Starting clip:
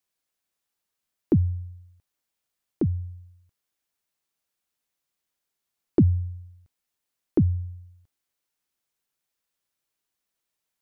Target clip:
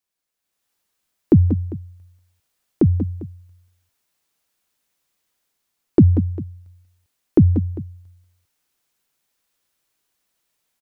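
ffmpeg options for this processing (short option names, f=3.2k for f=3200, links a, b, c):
-filter_complex "[0:a]dynaudnorm=f=360:g=3:m=10dB,asplit=2[a][b];[b]aecho=0:1:186|190|399:0.224|0.237|0.112[c];[a][c]amix=inputs=2:normalize=0,volume=-1dB"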